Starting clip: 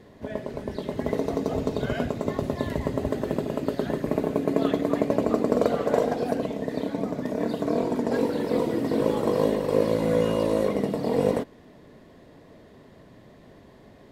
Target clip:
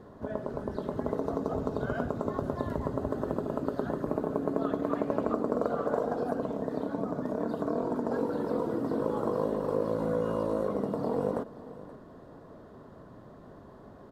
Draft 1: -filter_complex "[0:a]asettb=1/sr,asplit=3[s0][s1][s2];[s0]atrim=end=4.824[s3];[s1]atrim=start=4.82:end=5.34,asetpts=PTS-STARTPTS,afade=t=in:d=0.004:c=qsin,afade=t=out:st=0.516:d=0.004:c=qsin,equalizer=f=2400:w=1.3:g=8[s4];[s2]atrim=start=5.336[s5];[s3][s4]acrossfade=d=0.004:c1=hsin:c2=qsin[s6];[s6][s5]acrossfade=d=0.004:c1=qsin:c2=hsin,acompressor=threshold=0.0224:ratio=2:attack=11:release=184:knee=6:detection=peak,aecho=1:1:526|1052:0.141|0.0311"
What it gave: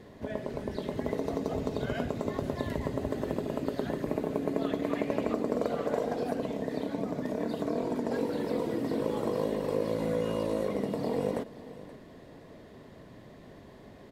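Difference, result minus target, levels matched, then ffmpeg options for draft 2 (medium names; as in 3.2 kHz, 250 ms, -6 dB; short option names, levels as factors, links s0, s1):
4 kHz band +10.0 dB
-filter_complex "[0:a]asettb=1/sr,asplit=3[s0][s1][s2];[s0]atrim=end=4.824[s3];[s1]atrim=start=4.82:end=5.34,asetpts=PTS-STARTPTS,afade=t=in:d=0.004:c=qsin,afade=t=out:st=0.516:d=0.004:c=qsin,equalizer=f=2400:w=1.3:g=8[s4];[s2]atrim=start=5.336[s5];[s3][s4]acrossfade=d=0.004:c1=hsin:c2=qsin[s6];[s6][s5]acrossfade=d=0.004:c1=qsin:c2=hsin,acompressor=threshold=0.0224:ratio=2:attack=11:release=184:knee=6:detection=peak,highshelf=f=1700:t=q:w=3:g=-7.5,aecho=1:1:526|1052:0.141|0.0311"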